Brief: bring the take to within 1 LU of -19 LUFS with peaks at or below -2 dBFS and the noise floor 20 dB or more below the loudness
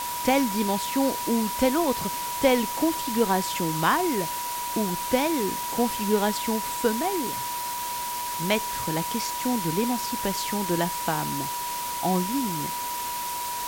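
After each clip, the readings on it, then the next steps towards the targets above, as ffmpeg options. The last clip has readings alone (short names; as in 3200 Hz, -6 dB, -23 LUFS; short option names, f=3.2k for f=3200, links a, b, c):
steady tone 970 Hz; tone level -30 dBFS; noise floor -31 dBFS; noise floor target -46 dBFS; loudness -26.0 LUFS; peak -8.0 dBFS; loudness target -19.0 LUFS
-> -af "bandreject=f=970:w=30"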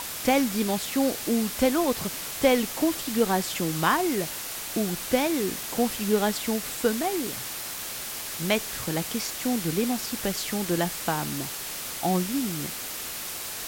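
steady tone none; noise floor -35 dBFS; noise floor target -47 dBFS
-> -af "afftdn=nr=12:nf=-35"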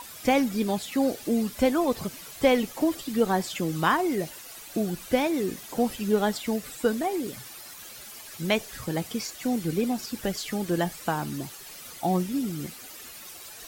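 noise floor -44 dBFS; noise floor target -48 dBFS
-> -af "afftdn=nr=6:nf=-44"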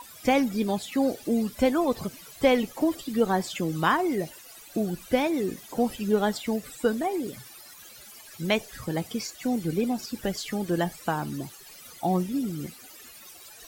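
noise floor -48 dBFS; loudness -27.5 LUFS; peak -9.0 dBFS; loudness target -19.0 LUFS
-> -af "volume=8.5dB,alimiter=limit=-2dB:level=0:latency=1"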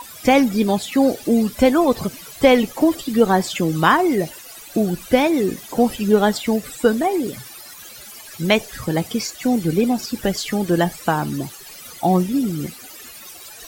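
loudness -19.0 LUFS; peak -2.0 dBFS; noise floor -40 dBFS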